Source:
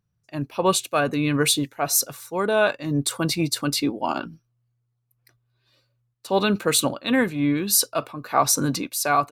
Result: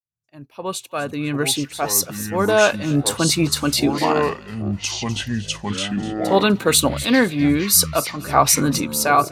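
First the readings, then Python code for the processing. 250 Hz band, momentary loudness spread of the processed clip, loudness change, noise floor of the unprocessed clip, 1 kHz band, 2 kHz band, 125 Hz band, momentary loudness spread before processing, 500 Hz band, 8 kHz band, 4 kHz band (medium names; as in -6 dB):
+4.5 dB, 10 LU, +3.5 dB, -74 dBFS, +4.0 dB, +4.5 dB, +5.0 dB, 8 LU, +4.0 dB, +4.0 dB, +4.5 dB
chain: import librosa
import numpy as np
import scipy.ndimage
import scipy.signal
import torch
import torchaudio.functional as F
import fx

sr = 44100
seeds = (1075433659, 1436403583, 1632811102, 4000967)

y = fx.fade_in_head(x, sr, length_s=2.57)
y = fx.echo_pitch(y, sr, ms=505, semitones=-6, count=3, db_per_echo=-6.0)
y = fx.echo_wet_highpass(y, sr, ms=250, feedback_pct=31, hz=2100.0, wet_db=-14.5)
y = F.gain(torch.from_numpy(y), 4.5).numpy()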